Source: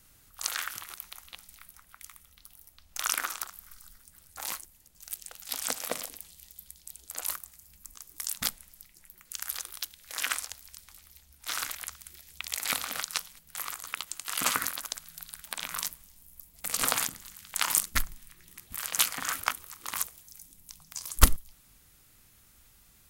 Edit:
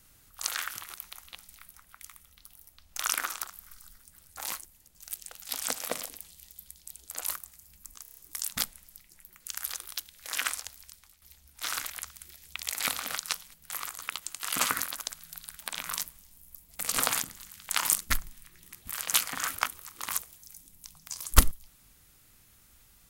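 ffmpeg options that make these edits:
ffmpeg -i in.wav -filter_complex "[0:a]asplit=7[link_01][link_02][link_03][link_04][link_05][link_06][link_07];[link_01]atrim=end=8.052[link_08];[link_02]atrim=start=8.018:end=8.052[link_09];[link_03]atrim=start=8.018:end=8.052[link_10];[link_04]atrim=start=8.018:end=8.052[link_11];[link_05]atrim=start=8.018:end=8.052[link_12];[link_06]atrim=start=8.018:end=11.07,asetpts=PTS-STARTPTS,afade=type=out:start_time=2.612:duration=0.44:silence=0.281838[link_13];[link_07]atrim=start=11.07,asetpts=PTS-STARTPTS,afade=type=in:duration=0.004:curve=hsin:silence=0.281838[link_14];[link_08][link_09]acrossfade=duration=0.004:curve1=hsin:curve2=hsin[link_15];[link_15][link_10]acrossfade=duration=0.004:curve1=hsin:curve2=hsin[link_16];[link_16][link_11]acrossfade=duration=0.004:curve1=hsin:curve2=hsin[link_17];[link_17][link_12]acrossfade=duration=0.004:curve1=hsin:curve2=hsin[link_18];[link_13][link_14]concat=n=2:v=0:a=1[link_19];[link_18][link_19]acrossfade=duration=0.004:curve1=hsin:curve2=hsin" out.wav

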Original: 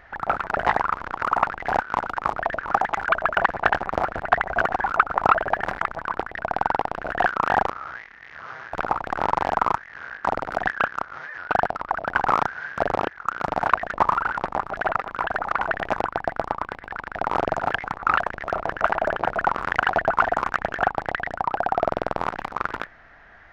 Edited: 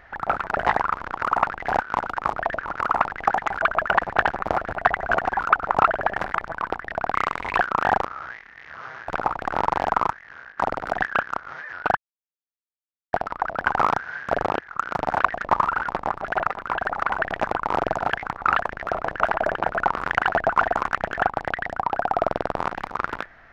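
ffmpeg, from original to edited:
ffmpeg -i in.wav -filter_complex "[0:a]asplit=8[link_01][link_02][link_03][link_04][link_05][link_06][link_07][link_08];[link_01]atrim=end=2.732[link_09];[link_02]atrim=start=1.148:end=1.682[link_10];[link_03]atrim=start=2.728:end=6.614[link_11];[link_04]atrim=start=6.61:end=7.22,asetpts=PTS-STARTPTS,asetrate=62622,aresample=44100,atrim=end_sample=18944,asetpts=PTS-STARTPTS[link_12];[link_05]atrim=start=7.216:end=10.22,asetpts=PTS-STARTPTS,afade=type=out:start_time=2.424:duration=0.58:silence=0.354813[link_13];[link_06]atrim=start=10.22:end=11.62,asetpts=PTS-STARTPTS,afade=type=in:duration=0.004:curve=hsin:silence=0.354813,afade=type=out:start_time=1.396:duration=0.004:curve=hsin,apad=pad_dur=1.16[link_14];[link_07]atrim=start=11.62:end=16.112,asetpts=PTS-STARTPTS,afade=type=in:duration=0.004:curve=hsin[link_15];[link_08]atrim=start=17.228[link_16];[link_09][link_10]acrossfade=duration=0.004:curve1=hsin:curve2=hsin[link_17];[link_17][link_11]acrossfade=duration=0.004:curve1=hsin:curve2=hsin[link_18];[link_18][link_12]acrossfade=duration=0.004:curve1=hsin:curve2=hsin[link_19];[link_13][link_14][link_15]concat=n=3:v=0:a=1[link_20];[link_19][link_20]acrossfade=duration=0.004:curve1=hsin:curve2=hsin[link_21];[link_21][link_16]acrossfade=duration=0.004:curve1=hsin:curve2=hsin" out.wav

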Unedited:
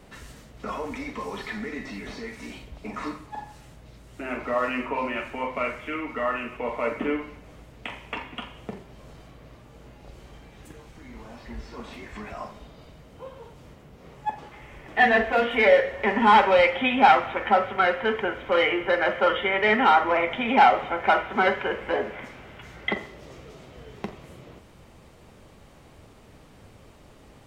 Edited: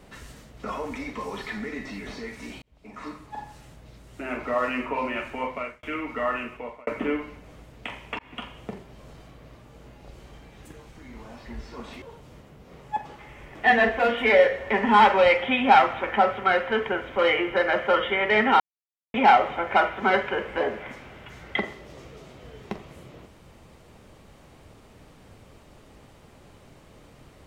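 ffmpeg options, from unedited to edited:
ffmpeg -i in.wav -filter_complex "[0:a]asplit=8[link_01][link_02][link_03][link_04][link_05][link_06][link_07][link_08];[link_01]atrim=end=2.62,asetpts=PTS-STARTPTS,afade=type=out:start_time=2.616:duration=0.004:curve=hsin[link_09];[link_02]atrim=start=2.62:end=5.83,asetpts=PTS-STARTPTS,afade=type=in:duration=0.8,afade=type=out:start_time=2.84:duration=0.37[link_10];[link_03]atrim=start=5.83:end=6.87,asetpts=PTS-STARTPTS,afade=type=in:duration=0.004:curve=hsin,afade=type=out:start_time=0.58:duration=0.46[link_11];[link_04]atrim=start=6.87:end=8.19,asetpts=PTS-STARTPTS,afade=type=in:duration=0.004:curve=hsin,afade=type=out:start_time=1.316:duration=0.004:curve=hsin[link_12];[link_05]atrim=start=8.19:end=12.022,asetpts=PTS-STARTPTS,afade=type=in:duration=0.27:curve=qsin[link_13];[link_06]atrim=start=13.348:end=19.93,asetpts=PTS-STARTPTS,afade=type=out:start_time=6.578:duration=0.004:curve=hsin[link_14];[link_07]atrim=start=19.93:end=20.47,asetpts=PTS-STARTPTS,volume=0[link_15];[link_08]atrim=start=20.47,asetpts=PTS-STARTPTS,afade=type=in:duration=0.004:curve=hsin[link_16];[link_09][link_10][link_11][link_12][link_13]concat=n=5:v=0:a=1[link_17];[link_14][link_15][link_16]concat=n=3:v=0:a=1[link_18];[link_17][link_18]acrossfade=duration=0.004:curve1=hsin:curve2=hsin" out.wav

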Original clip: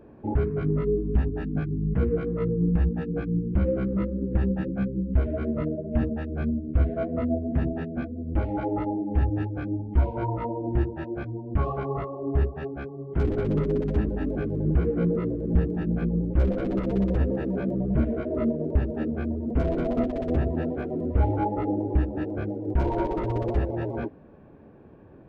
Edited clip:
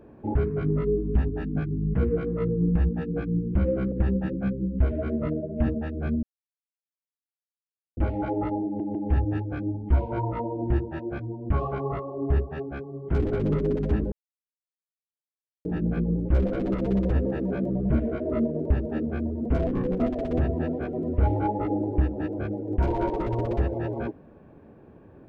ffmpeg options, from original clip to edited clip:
ffmpeg -i in.wav -filter_complex "[0:a]asplit=10[link_01][link_02][link_03][link_04][link_05][link_06][link_07][link_08][link_09][link_10];[link_01]atrim=end=3.922[link_11];[link_02]atrim=start=4.268:end=6.58,asetpts=PTS-STARTPTS,afade=type=out:start_time=2.308:duration=0.004:curve=hsin[link_12];[link_03]atrim=start=6.58:end=8.32,asetpts=PTS-STARTPTS,volume=0[link_13];[link_04]atrim=start=8.32:end=9.152,asetpts=PTS-STARTPTS,afade=type=in:duration=0.004:curve=hsin[link_14];[link_05]atrim=start=8.998:end=9.152[link_15];[link_06]atrim=start=8.998:end=14.17,asetpts=PTS-STARTPTS,afade=type=out:start_time=5.168:duration=0.004:curve=hsin[link_16];[link_07]atrim=start=14.17:end=15.7,asetpts=PTS-STARTPTS,volume=0[link_17];[link_08]atrim=start=15.7:end=19.724,asetpts=PTS-STARTPTS,afade=type=in:duration=0.004:curve=hsin[link_18];[link_09]atrim=start=19.72:end=19.97,asetpts=PTS-STARTPTS,asetrate=33516,aresample=44100[link_19];[link_10]atrim=start=19.966[link_20];[link_12][link_13][link_14]concat=n=3:v=0:a=1[link_21];[link_11][link_21]acrossfade=duration=0.004:curve1=hsin:curve2=hsin[link_22];[link_22][link_15]acrossfade=duration=0.004:curve1=hsin:curve2=hsin[link_23];[link_16][link_17][link_18]concat=n=3:v=0:a=1[link_24];[link_23][link_24]acrossfade=duration=0.004:curve1=hsin:curve2=hsin[link_25];[link_25][link_19]acrossfade=duration=0.004:curve1=hsin:curve2=hsin[link_26];[link_26][link_20]acrossfade=duration=0.004:curve1=hsin:curve2=hsin" out.wav

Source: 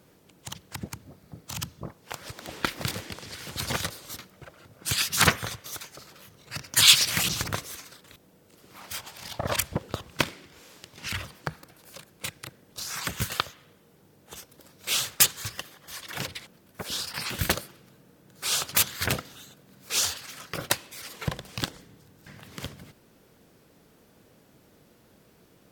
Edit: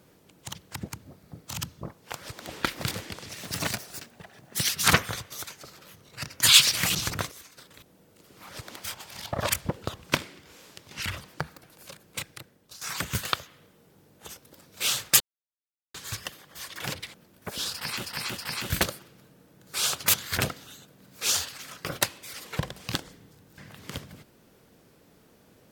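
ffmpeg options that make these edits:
ffmpeg -i in.wav -filter_complex "[0:a]asplit=11[link_01][link_02][link_03][link_04][link_05][link_06][link_07][link_08][link_09][link_10][link_11];[link_01]atrim=end=3.294[link_12];[link_02]atrim=start=3.29:end=5.03,asetpts=PTS-STARTPTS,asetrate=54684,aresample=44100,atrim=end_sample=61882,asetpts=PTS-STARTPTS[link_13];[link_03]atrim=start=5.026:end=7.652[link_14];[link_04]atrim=start=7.648:end=7.912,asetpts=PTS-STARTPTS,volume=-7.5dB[link_15];[link_05]atrim=start=7.908:end=8.832[link_16];[link_06]atrim=start=2.198:end=2.472[link_17];[link_07]atrim=start=8.828:end=12.88,asetpts=PTS-STARTPTS,afade=type=out:start_time=3.432:duration=0.62:silence=0.211349[link_18];[link_08]atrim=start=12.88:end=15.27,asetpts=PTS-STARTPTS,afade=type=in:duration=0.004:curve=hsin:silence=0.211349,afade=type=out:start_time=2.386:duration=0.004:curve=hsin,apad=pad_dur=0.74[link_19];[link_09]atrim=start=15.27:end=17.382,asetpts=PTS-STARTPTS,afade=type=in:duration=0.004:curve=hsin[link_20];[link_10]atrim=start=17.058:end=17.382[link_21];[link_11]atrim=start=17.058[link_22];[link_12][link_13]acrossfade=duration=0.004:curve1=hsin:curve2=hsin[link_23];[link_23][link_14]acrossfade=duration=0.004:curve1=hsin:curve2=hsin[link_24];[link_24][link_15]acrossfade=duration=0.004:curve1=hsin:curve2=hsin[link_25];[link_25][link_16]acrossfade=duration=0.004:curve1=hsin:curve2=hsin[link_26];[link_26][link_17]acrossfade=duration=0.004:curve1=hsin:curve2=hsin[link_27];[link_18][link_19][link_20]concat=n=3:v=0:a=1[link_28];[link_27][link_28]acrossfade=duration=0.004:curve1=hsin:curve2=hsin[link_29];[link_29][link_21]acrossfade=duration=0.004:curve1=hsin:curve2=hsin[link_30];[link_30][link_22]acrossfade=duration=0.004:curve1=hsin:curve2=hsin" out.wav

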